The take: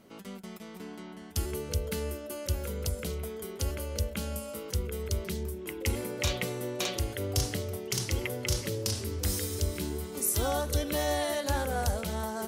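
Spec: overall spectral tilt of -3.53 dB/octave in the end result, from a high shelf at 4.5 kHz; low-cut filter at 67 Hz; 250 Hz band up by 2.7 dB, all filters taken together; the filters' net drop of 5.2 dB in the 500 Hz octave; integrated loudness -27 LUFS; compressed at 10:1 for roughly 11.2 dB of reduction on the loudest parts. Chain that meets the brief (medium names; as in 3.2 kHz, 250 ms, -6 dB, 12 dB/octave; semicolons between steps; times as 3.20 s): high-pass 67 Hz; peaking EQ 250 Hz +6 dB; peaking EQ 500 Hz -8.5 dB; treble shelf 4.5 kHz +4.5 dB; compression 10:1, threshold -35 dBFS; trim +12 dB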